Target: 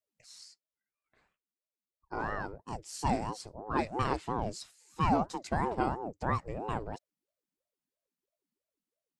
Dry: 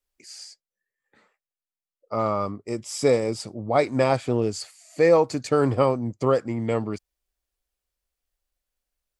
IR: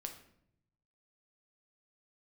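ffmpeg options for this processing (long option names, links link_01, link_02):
-af "aeval=exprs='val(0)*sin(2*PI*420*n/s+420*0.55/3*sin(2*PI*3*n/s))':channel_layout=same,volume=-7.5dB"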